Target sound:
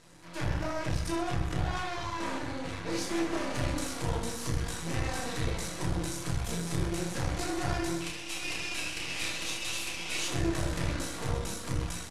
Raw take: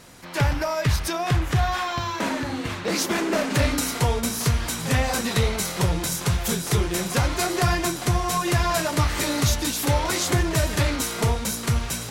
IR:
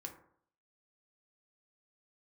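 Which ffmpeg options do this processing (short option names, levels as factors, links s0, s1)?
-filter_complex "[0:a]asoftclip=type=tanh:threshold=0.126,asettb=1/sr,asplit=3[s0][s1][s2];[s0]atrim=end=8.004[s3];[s1]atrim=start=8:end=10.28,asetpts=PTS-STARTPTS,afade=t=in:d=0.004:c=qsin,afade=t=out:st=2.276:d=0.004:c=qsin,highpass=f=2600:t=q:w=5.3[s4];[s2]atrim=start=10.276[s5];[s3][s4]acrossfade=d=0.004:c1=hsin:c2=qsin[s6];[s6][s5]acrossfade=d=0.004:c1=qsin:c2=hsin,aecho=1:1:30|72|130.8|213.1|328.4:0.631|0.398|0.251|0.158|0.1,aeval=exprs='max(val(0),0)':c=same,lowpass=f=11000:w=0.5412,lowpass=f=11000:w=1.3066[s7];[1:a]atrim=start_sample=2205[s8];[s7][s8]afir=irnorm=-1:irlink=0,volume=0.75"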